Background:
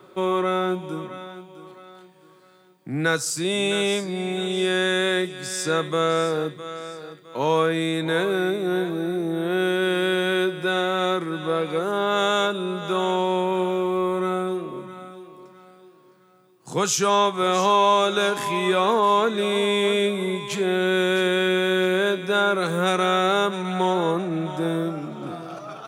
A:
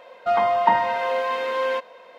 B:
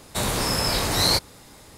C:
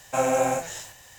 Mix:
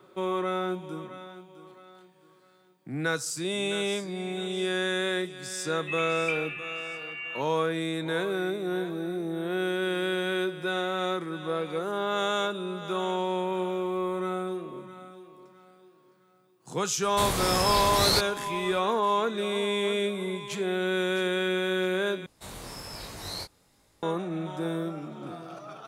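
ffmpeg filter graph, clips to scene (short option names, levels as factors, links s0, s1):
-filter_complex "[2:a]asplit=2[s0][s1];[0:a]volume=0.473[s2];[1:a]lowpass=f=2800:t=q:w=0.5098,lowpass=f=2800:t=q:w=0.6013,lowpass=f=2800:t=q:w=0.9,lowpass=f=2800:t=q:w=2.563,afreqshift=-3300[s3];[s1]flanger=delay=18:depth=5.5:speed=1.2[s4];[s2]asplit=2[s5][s6];[s5]atrim=end=22.264[s7];[s4]atrim=end=1.77,asetpts=PTS-STARTPTS,volume=0.2[s8];[s6]atrim=start=24.026[s9];[s3]atrim=end=2.18,asetpts=PTS-STARTPTS,volume=0.2,afade=t=in:d=0.004:c=hsin,afade=t=out:st=2.176:d=0.004:c=hsin,adelay=247401S[s10];[s0]atrim=end=1.77,asetpts=PTS-STARTPTS,volume=0.631,afade=t=in:d=0.004:c=hsin,afade=t=out:st=1.766:d=0.004:c=hsin,adelay=17020[s11];[s7][s8]acrossfade=d=0.004:c1=hsin:c2=hsin[s12];[s12][s9]acrossfade=d=0.004:c1=hsin:c2=hsin[s13];[s13][s10][s11]amix=inputs=3:normalize=0"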